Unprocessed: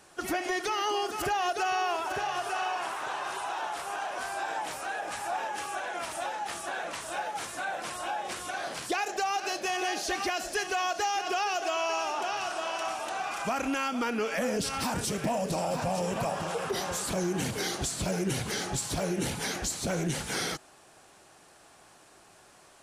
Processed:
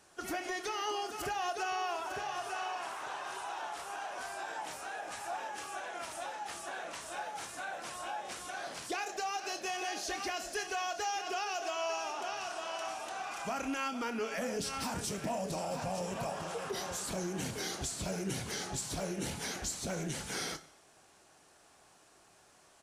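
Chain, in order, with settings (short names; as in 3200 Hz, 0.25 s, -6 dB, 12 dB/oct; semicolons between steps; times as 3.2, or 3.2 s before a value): bell 6100 Hz +2.5 dB; doubler 26 ms -12 dB; on a send: reverb, pre-delay 3 ms, DRR 14 dB; on the sum: gain -7 dB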